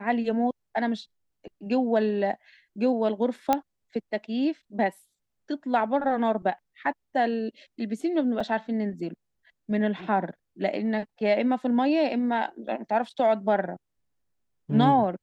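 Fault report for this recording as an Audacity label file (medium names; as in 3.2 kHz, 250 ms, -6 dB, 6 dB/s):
3.530000	3.530000	pop -9 dBFS
8.400000	8.400000	dropout 4.4 ms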